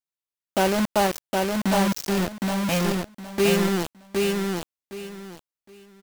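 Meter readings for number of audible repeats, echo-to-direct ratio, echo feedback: 3, -3.0 dB, 23%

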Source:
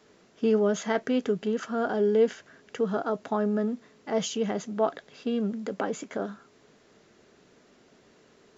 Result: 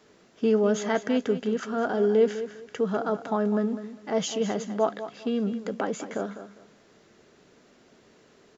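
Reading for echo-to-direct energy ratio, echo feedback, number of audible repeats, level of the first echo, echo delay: -11.5 dB, 24%, 2, -12.0 dB, 201 ms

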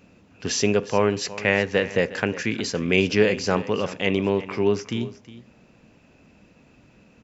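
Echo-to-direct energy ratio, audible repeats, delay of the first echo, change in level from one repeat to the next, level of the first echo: -16.5 dB, 1, 361 ms, no regular repeats, -16.5 dB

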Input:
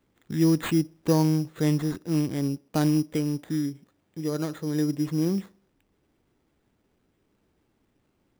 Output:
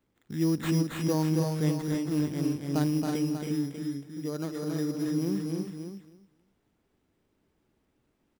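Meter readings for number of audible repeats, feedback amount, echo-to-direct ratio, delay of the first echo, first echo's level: 5, no regular repeats, -1.0 dB, 274 ms, -4.0 dB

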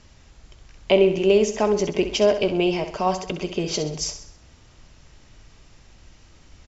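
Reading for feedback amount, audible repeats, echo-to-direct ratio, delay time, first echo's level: 48%, 4, -9.0 dB, 65 ms, -10.0 dB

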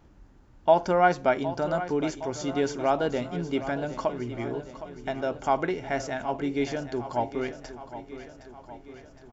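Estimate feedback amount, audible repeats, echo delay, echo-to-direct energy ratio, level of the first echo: 59%, 5, 764 ms, -11.0 dB, -13.0 dB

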